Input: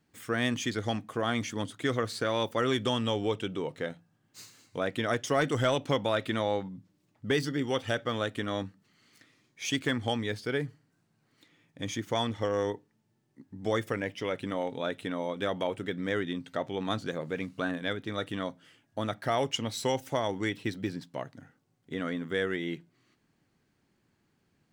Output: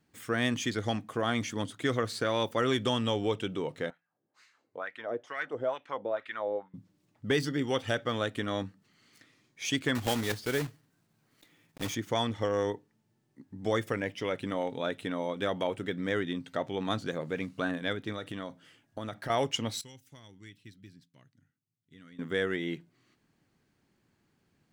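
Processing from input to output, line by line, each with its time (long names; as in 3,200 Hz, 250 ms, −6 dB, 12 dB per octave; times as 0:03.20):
0:03.90–0:06.74: auto-filter band-pass sine 2.2 Hz 420–2,000 Hz
0:09.95–0:11.96: one scale factor per block 3 bits
0:18.12–0:19.30: downward compressor, threshold −33 dBFS
0:19.81–0:22.19: guitar amp tone stack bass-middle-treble 6-0-2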